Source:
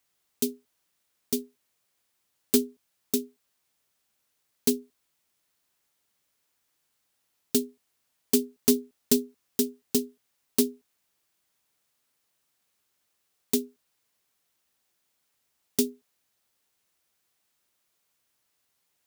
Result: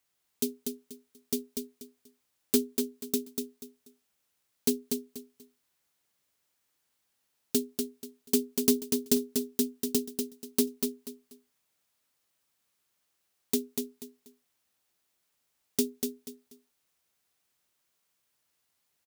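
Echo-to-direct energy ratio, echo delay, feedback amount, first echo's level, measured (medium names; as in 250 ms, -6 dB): -4.5 dB, 242 ms, 26%, -5.0 dB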